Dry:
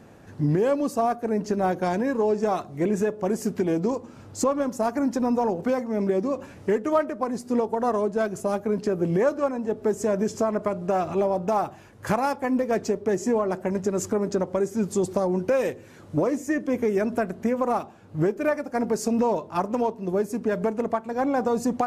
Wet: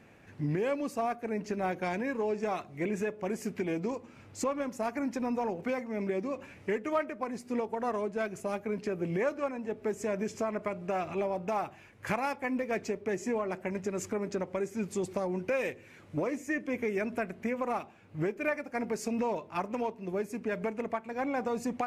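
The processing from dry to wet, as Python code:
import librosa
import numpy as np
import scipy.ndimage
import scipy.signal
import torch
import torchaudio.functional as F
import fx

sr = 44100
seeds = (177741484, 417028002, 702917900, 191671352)

y = fx.peak_eq(x, sr, hz=2300.0, db=12.5, octaves=0.8)
y = F.gain(torch.from_numpy(y), -9.0).numpy()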